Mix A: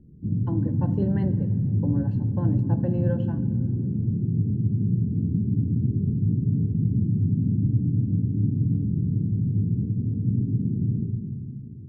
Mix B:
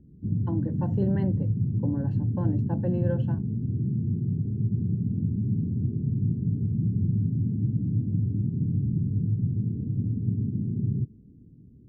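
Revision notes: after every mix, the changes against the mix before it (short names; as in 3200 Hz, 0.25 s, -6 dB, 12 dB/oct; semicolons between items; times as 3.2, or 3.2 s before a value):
reverb: off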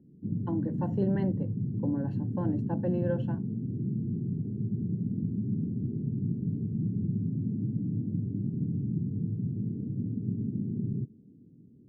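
master: add HPF 170 Hz 12 dB/oct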